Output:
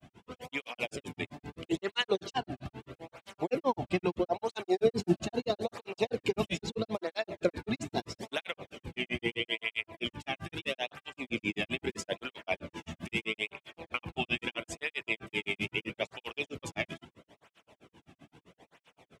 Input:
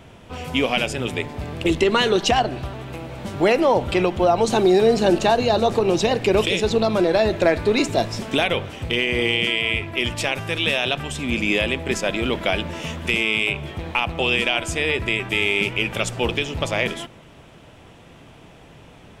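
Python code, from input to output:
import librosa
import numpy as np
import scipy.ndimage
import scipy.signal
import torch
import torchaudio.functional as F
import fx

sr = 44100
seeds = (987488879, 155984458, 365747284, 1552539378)

y = fx.octave_divider(x, sr, octaves=1, level_db=-5.0)
y = fx.granulator(y, sr, seeds[0], grain_ms=101.0, per_s=7.7, spray_ms=31.0, spread_st=0)
y = fx.flanger_cancel(y, sr, hz=0.77, depth_ms=2.3)
y = F.gain(torch.from_numpy(y), -5.5).numpy()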